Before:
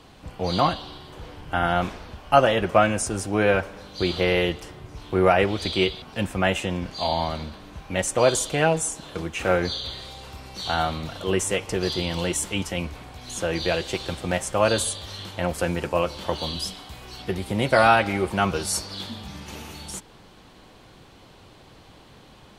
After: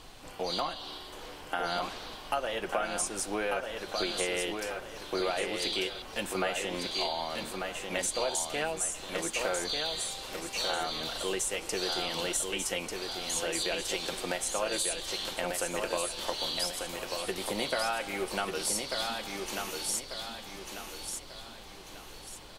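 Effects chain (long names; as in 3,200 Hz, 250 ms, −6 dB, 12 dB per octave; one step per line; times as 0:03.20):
high-pass filter 320 Hz 12 dB per octave
high-shelf EQ 4,300 Hz +9 dB
downward compressor 5 to 1, threshold −28 dBFS, peak gain reduction 16 dB
background noise brown −51 dBFS
repeating echo 1,193 ms, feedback 38%, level −5 dB
level −2 dB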